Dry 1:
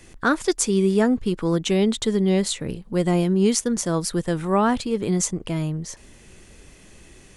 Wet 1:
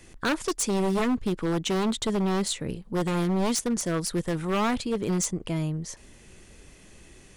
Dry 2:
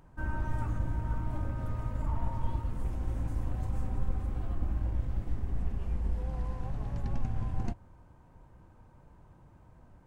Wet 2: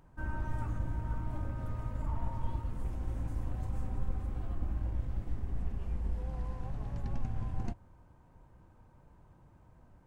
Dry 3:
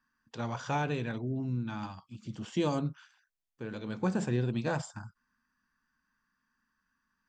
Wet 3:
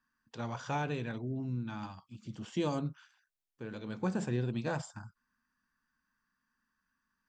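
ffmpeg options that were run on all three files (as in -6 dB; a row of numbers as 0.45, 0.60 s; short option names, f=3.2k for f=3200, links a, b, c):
-af "aeval=exprs='0.15*(abs(mod(val(0)/0.15+3,4)-2)-1)':c=same,volume=-3dB"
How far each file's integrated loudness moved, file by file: -5.0, -3.0, -3.0 LU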